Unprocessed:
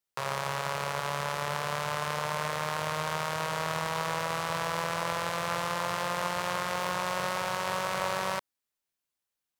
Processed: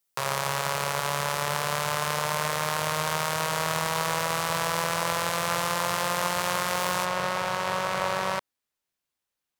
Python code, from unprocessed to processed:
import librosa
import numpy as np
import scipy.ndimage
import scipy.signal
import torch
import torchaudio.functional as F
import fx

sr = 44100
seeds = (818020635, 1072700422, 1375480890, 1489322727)

y = fx.high_shelf(x, sr, hz=5900.0, db=fx.steps((0.0, 9.0), (7.04, -4.0)))
y = y * librosa.db_to_amplitude(3.5)